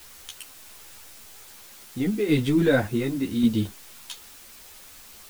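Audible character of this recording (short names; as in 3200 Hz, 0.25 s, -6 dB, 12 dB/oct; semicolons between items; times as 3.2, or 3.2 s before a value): random-step tremolo, depth 70%; a quantiser's noise floor 8-bit, dither triangular; a shimmering, thickened sound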